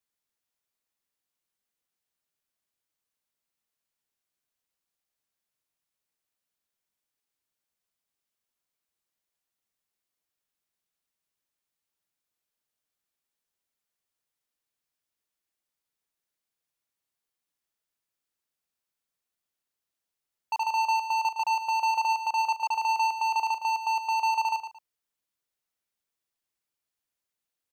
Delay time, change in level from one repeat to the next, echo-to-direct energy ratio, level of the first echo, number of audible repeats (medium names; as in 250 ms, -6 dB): 112 ms, -11.5 dB, -9.0 dB, -9.5 dB, 2